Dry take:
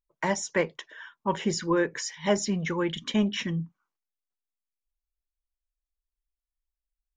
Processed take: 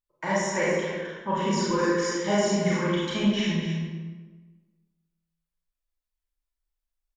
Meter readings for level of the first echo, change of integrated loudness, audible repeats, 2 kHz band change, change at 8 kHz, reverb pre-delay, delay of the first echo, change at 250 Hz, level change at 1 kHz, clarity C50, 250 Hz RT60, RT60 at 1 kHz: -9.5 dB, +2.5 dB, 1, +3.0 dB, +0.5 dB, 27 ms, 0.259 s, +3.0 dB, +3.5 dB, -3.0 dB, 1.5 s, 1.3 s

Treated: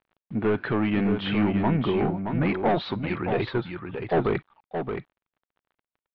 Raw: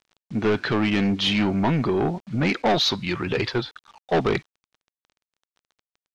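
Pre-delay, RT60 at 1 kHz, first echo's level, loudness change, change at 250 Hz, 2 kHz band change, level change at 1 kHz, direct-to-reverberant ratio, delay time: none, none, -6.5 dB, -3.0 dB, -1.5 dB, -4.5 dB, -2.0 dB, none, 0.623 s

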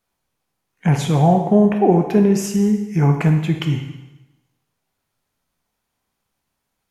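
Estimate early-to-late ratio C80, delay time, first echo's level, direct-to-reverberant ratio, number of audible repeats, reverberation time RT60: 8.5 dB, none, none, 4.0 dB, none, 0.95 s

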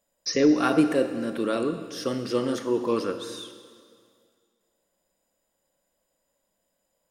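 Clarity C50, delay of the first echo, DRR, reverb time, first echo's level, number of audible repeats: 9.5 dB, none, 8.5 dB, 2.0 s, none, none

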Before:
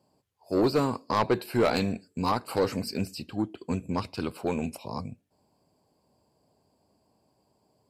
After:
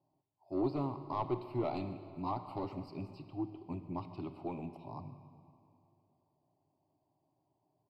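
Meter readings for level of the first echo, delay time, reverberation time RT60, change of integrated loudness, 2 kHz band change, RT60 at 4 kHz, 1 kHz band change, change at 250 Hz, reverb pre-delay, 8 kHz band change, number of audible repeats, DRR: -20.0 dB, 0.145 s, 2.6 s, -10.5 dB, -21.0 dB, 2.1 s, -10.0 dB, -9.5 dB, 36 ms, under -30 dB, 1, 10.0 dB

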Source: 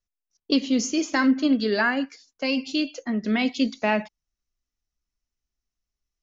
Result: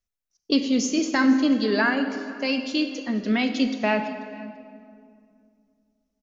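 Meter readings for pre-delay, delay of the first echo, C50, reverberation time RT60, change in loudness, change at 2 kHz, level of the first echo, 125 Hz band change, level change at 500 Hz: 25 ms, 0.488 s, 8.5 dB, 2.3 s, +0.5 dB, +0.5 dB, -22.0 dB, n/a, +1.0 dB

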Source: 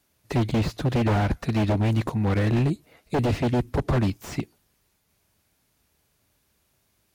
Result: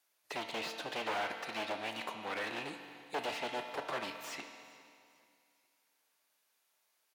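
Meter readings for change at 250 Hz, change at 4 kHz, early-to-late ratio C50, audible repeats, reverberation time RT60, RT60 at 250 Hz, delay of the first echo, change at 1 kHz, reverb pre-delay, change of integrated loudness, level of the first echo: -23.0 dB, -3.0 dB, 6.0 dB, 2, 2.4 s, 2.5 s, 0.418 s, -7.5 dB, 4 ms, -14.5 dB, -24.0 dB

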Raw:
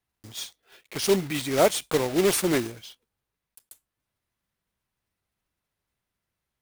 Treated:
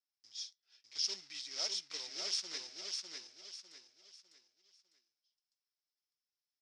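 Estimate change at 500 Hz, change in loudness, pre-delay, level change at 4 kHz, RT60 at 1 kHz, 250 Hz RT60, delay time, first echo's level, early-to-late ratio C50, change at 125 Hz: -31.5 dB, -15.5 dB, none, -4.5 dB, none, none, 0.602 s, -3.5 dB, none, under -40 dB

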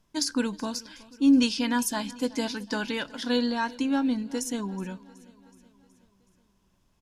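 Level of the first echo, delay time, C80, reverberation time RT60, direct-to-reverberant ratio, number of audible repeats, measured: -21.5 dB, 0.372 s, none, none, none, 3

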